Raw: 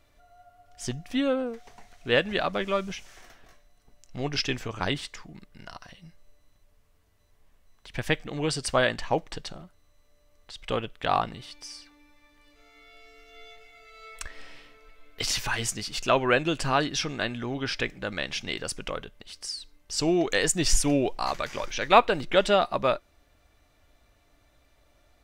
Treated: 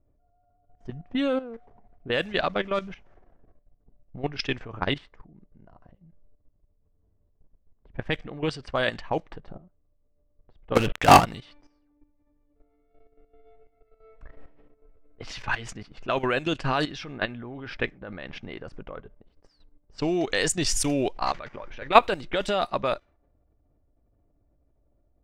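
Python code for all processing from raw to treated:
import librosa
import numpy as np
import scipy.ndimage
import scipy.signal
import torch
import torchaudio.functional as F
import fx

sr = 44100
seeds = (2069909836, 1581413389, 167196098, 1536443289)

y = fx.chain(x, sr, fx.lowpass(hz=2900.0, slope=24),
    fx.leveller(passes=5), at=(10.75, 11.25))
y = fx.env_lowpass(y, sr, base_hz=420.0, full_db=-19.0)
y = fx.high_shelf(y, sr, hz=5100.0, db=4.0)
y = fx.level_steps(y, sr, step_db=14)
y = F.gain(torch.from_numpy(y), 4.0).numpy()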